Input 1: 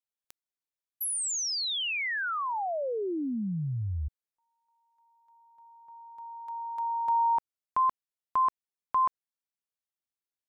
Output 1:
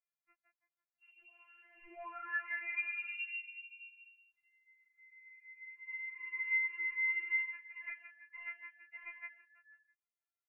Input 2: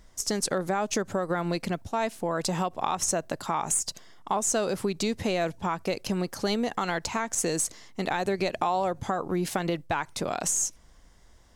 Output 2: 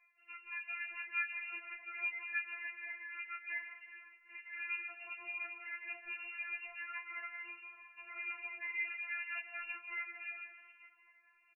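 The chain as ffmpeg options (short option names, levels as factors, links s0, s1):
-filter_complex "[0:a]highpass=720,areverse,acompressor=threshold=0.01:ratio=8:attack=30:release=359:knee=1:detection=rms,areverse,asplit=6[s0][s1][s2][s3][s4][s5];[s1]adelay=166,afreqshift=44,volume=0.562[s6];[s2]adelay=332,afreqshift=88,volume=0.219[s7];[s3]adelay=498,afreqshift=132,volume=0.0851[s8];[s4]adelay=664,afreqshift=176,volume=0.0335[s9];[s5]adelay=830,afreqshift=220,volume=0.013[s10];[s0][s6][s7][s8][s9][s10]amix=inputs=6:normalize=0,afftfilt=real='hypot(re,im)*cos(2*PI*random(0))':imag='hypot(re,im)*sin(2*PI*random(1))':win_size=512:overlap=0.75,flanger=delay=19:depth=3:speed=0.19,aeval=exprs='0.0188*(cos(1*acos(clip(val(0)/0.0188,-1,1)))-cos(1*PI/2))+0.00335*(cos(5*acos(clip(val(0)/0.0188,-1,1)))-cos(5*PI/2))+0.00106*(cos(8*acos(clip(val(0)/0.0188,-1,1)))-cos(8*PI/2))':c=same,aresample=16000,adynamicsmooth=sensitivity=5:basefreq=1400,aresample=44100,lowpass=f=2600:t=q:w=0.5098,lowpass=f=2600:t=q:w=0.6013,lowpass=f=2600:t=q:w=0.9,lowpass=f=2600:t=q:w=2.563,afreqshift=-3000,afftfilt=real='re*4*eq(mod(b,16),0)':imag='im*4*eq(mod(b,16),0)':win_size=2048:overlap=0.75,volume=3.16"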